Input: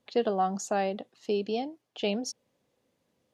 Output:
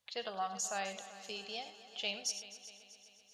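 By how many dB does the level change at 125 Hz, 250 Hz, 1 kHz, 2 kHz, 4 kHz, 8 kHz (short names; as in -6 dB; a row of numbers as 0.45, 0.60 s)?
n/a, -20.0 dB, -9.5 dB, -2.0 dB, 0.0 dB, +1.5 dB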